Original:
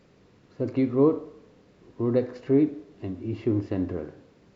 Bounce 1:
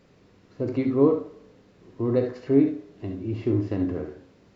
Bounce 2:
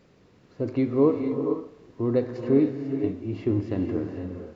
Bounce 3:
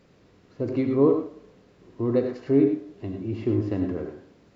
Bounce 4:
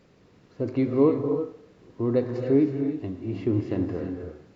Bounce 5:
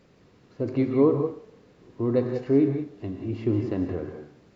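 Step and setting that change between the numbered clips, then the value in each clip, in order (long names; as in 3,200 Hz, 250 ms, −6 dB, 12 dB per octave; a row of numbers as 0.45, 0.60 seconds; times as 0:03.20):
reverb whose tail is shaped and stops, gate: 90, 520, 130, 350, 210 milliseconds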